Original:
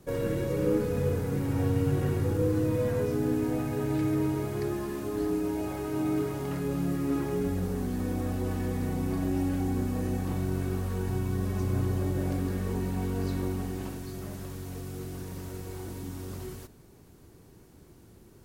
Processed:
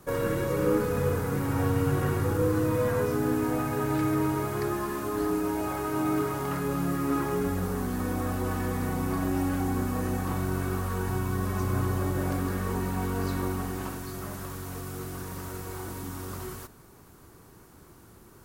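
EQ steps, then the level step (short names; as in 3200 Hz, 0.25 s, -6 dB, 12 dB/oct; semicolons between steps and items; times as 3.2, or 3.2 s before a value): bell 1200 Hz +11 dB 1.2 oct; high shelf 6500 Hz +8 dB; 0.0 dB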